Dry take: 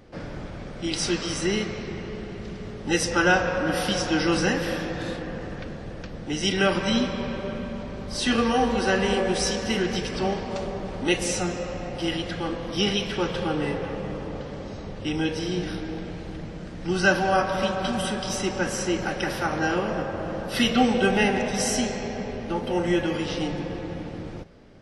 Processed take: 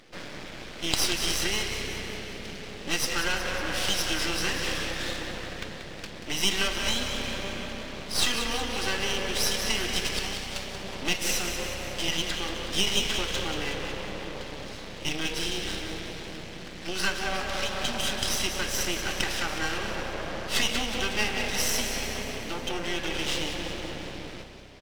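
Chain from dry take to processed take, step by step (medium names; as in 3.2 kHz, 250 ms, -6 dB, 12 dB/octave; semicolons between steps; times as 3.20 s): 10.19–10.84 s: peaking EQ 440 Hz -13 dB -> -4.5 dB 2.3 oct; compression 5:1, threshold -25 dBFS, peak gain reduction 10.5 dB; frequency weighting D; half-wave rectifier; frequency-shifting echo 184 ms, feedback 60%, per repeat +32 Hz, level -9 dB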